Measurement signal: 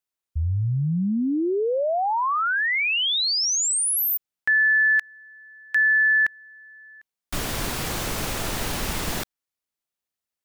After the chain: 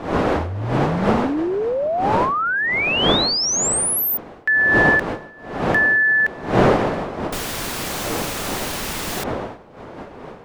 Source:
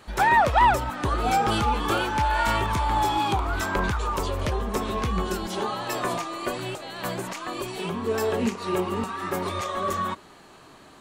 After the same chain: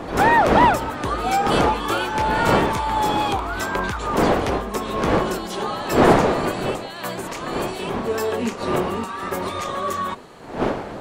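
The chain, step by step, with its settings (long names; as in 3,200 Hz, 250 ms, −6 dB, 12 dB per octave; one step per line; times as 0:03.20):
wind on the microphone 630 Hz −25 dBFS
low-shelf EQ 130 Hz −8.5 dB
level +2.5 dB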